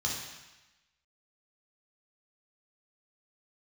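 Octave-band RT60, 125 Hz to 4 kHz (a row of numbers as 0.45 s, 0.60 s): 1.0 s, 1.0 s, 0.95 s, 1.1 s, 1.2 s, 1.1 s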